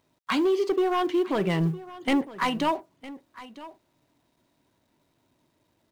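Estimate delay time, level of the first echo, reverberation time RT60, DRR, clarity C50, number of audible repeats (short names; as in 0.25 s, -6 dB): 0.958 s, -17.5 dB, none, none, none, 1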